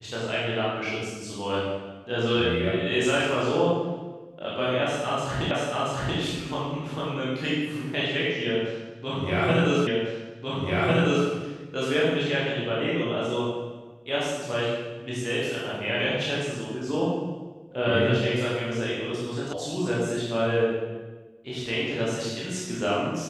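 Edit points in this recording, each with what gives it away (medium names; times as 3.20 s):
5.51 s: repeat of the last 0.68 s
9.87 s: repeat of the last 1.4 s
19.53 s: sound stops dead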